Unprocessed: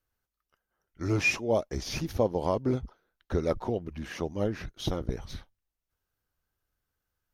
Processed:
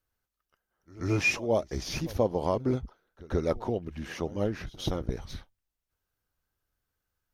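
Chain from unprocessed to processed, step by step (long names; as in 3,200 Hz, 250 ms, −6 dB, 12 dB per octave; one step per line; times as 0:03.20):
echo ahead of the sound 132 ms −20 dB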